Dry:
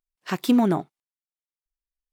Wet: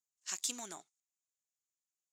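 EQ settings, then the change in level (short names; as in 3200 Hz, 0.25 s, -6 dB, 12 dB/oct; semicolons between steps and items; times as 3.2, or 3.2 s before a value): band-pass 6900 Hz, Q 7; +13.0 dB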